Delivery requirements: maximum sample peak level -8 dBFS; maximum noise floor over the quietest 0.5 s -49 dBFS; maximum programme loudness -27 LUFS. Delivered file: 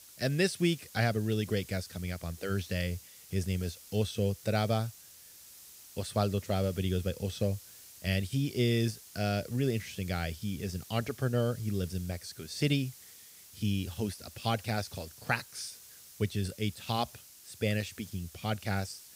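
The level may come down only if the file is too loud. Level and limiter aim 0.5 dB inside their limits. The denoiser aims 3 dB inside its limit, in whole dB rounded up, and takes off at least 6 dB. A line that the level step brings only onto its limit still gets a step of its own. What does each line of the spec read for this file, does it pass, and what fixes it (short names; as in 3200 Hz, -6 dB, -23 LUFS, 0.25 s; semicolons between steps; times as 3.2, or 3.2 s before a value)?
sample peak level -14.0 dBFS: OK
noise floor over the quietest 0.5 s -54 dBFS: OK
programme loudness -33.5 LUFS: OK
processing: none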